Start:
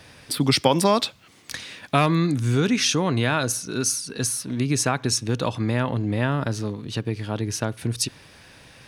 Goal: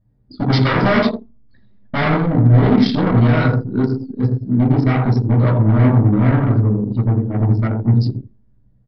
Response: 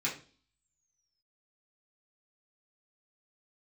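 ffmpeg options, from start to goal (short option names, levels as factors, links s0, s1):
-filter_complex "[0:a]equalizer=f=2400:w=1.1:g=-14.5,asplit=2[s0][s1];[s1]adelay=83,lowpass=f=2500:p=1,volume=0.596,asplit=2[s2][s3];[s3]adelay=83,lowpass=f=2500:p=1,volume=0.35,asplit=2[s4][s5];[s5]adelay=83,lowpass=f=2500:p=1,volume=0.35,asplit=2[s6][s7];[s7]adelay=83,lowpass=f=2500:p=1,volume=0.35[s8];[s0][s2][s4][s6][s8]amix=inputs=5:normalize=0,aresample=11025,aeval=exprs='0.126*(abs(mod(val(0)/0.126+3,4)-2)-1)':c=same,aresample=44100[s9];[1:a]atrim=start_sample=2205,asetrate=39249,aresample=44100[s10];[s9][s10]afir=irnorm=-1:irlink=0,anlmdn=1580,volume=1.33"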